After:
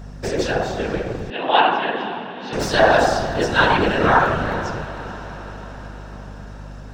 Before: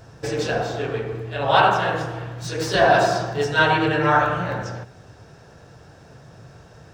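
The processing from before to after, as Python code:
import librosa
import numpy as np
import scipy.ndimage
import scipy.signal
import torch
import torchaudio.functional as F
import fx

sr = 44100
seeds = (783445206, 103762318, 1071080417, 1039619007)

y = fx.whisperise(x, sr, seeds[0])
y = fx.echo_diffused(y, sr, ms=484, feedback_pct=60, wet_db=-14.5)
y = fx.add_hum(y, sr, base_hz=50, snr_db=16)
y = fx.cabinet(y, sr, low_hz=220.0, low_slope=24, high_hz=3700.0, hz=(580.0, 1300.0, 2900.0), db=(-7, -8, 3), at=(1.3, 2.53))
y = y * 10.0 ** (2.0 / 20.0)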